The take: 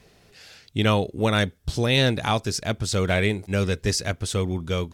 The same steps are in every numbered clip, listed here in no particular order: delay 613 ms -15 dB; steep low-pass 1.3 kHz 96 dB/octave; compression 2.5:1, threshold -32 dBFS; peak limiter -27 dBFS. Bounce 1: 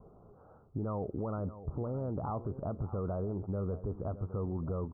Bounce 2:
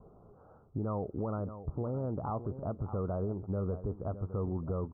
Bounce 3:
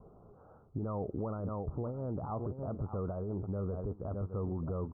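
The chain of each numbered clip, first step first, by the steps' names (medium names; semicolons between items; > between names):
steep low-pass > peak limiter > delay > compression; steep low-pass > compression > delay > peak limiter; delay > peak limiter > compression > steep low-pass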